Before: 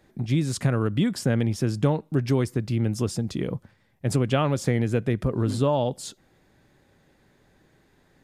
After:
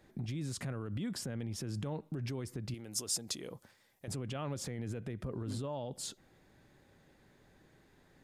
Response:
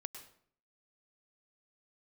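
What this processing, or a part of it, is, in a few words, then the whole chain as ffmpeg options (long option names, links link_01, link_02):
stacked limiters: -filter_complex "[0:a]alimiter=limit=-16dB:level=0:latency=1:release=25,alimiter=limit=-22dB:level=0:latency=1:release=132,alimiter=level_in=3.5dB:limit=-24dB:level=0:latency=1:release=54,volume=-3.5dB,asettb=1/sr,asplit=3[link_01][link_02][link_03];[link_01]atrim=end=2.744[link_04];[link_02]atrim=start=2.74:end=4.08,asetpts=PTS-STARTPTS,afade=type=in:duration=0.004:curve=qsin,afade=type=out:start_time=1.336:duration=0.004:curve=qsin,bass=frequency=250:gain=-13,treble=frequency=4000:gain=11[link_05];[link_03]atrim=start=4.076[link_06];[link_04][link_05]acrossfade=duration=0.004:curve1=hsin:curve2=qsin[link_07];[link_07][link_06]acrossfade=duration=0.004:curve1=qsin:curve2=hsin,volume=-3.5dB"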